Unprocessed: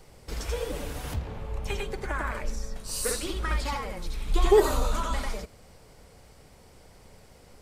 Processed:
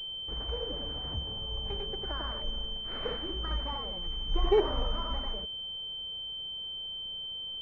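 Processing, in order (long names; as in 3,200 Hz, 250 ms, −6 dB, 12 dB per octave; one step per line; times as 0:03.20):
switching amplifier with a slow clock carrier 3,100 Hz
level −5.5 dB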